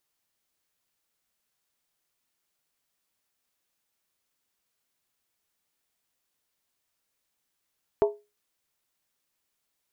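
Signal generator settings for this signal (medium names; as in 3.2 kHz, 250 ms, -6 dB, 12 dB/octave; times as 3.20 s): skin hit, lowest mode 415 Hz, decay 0.26 s, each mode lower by 6.5 dB, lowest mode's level -15 dB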